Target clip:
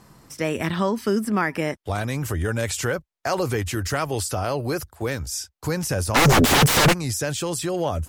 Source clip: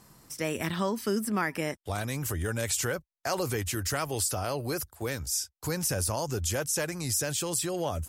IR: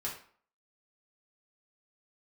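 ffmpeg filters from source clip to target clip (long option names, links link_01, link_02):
-filter_complex "[0:a]asplit=3[link_01][link_02][link_03];[link_01]afade=type=out:start_time=6.14:duration=0.02[link_04];[link_02]aeval=exprs='0.133*sin(PI/2*8.91*val(0)/0.133)':channel_layout=same,afade=type=in:start_time=6.14:duration=0.02,afade=type=out:start_time=6.92:duration=0.02[link_05];[link_03]afade=type=in:start_time=6.92:duration=0.02[link_06];[link_04][link_05][link_06]amix=inputs=3:normalize=0,aemphasis=mode=reproduction:type=cd,volume=6.5dB"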